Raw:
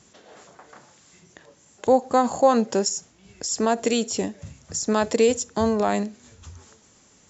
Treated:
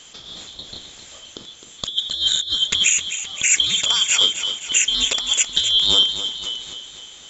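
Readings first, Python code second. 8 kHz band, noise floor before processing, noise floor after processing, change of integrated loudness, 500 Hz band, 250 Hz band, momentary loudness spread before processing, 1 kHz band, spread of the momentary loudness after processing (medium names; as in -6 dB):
no reading, -57 dBFS, -43 dBFS, +6.0 dB, -19.0 dB, -17.5 dB, 13 LU, -14.0 dB, 20 LU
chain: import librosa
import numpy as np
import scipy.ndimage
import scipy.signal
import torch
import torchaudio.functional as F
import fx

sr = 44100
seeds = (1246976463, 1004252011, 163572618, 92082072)

p1 = fx.band_shuffle(x, sr, order='2413')
p2 = fx.over_compress(p1, sr, threshold_db=-24.0, ratio=-0.5)
p3 = p2 + fx.echo_feedback(p2, sr, ms=261, feedback_pct=55, wet_db=-10.5, dry=0)
y = p3 * 10.0 ** (7.0 / 20.0)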